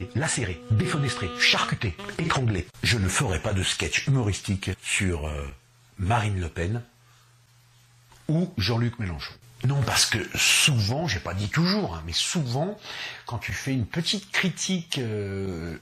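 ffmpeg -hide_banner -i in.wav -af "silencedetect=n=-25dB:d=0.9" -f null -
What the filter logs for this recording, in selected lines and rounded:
silence_start: 6.78
silence_end: 8.29 | silence_duration: 1.51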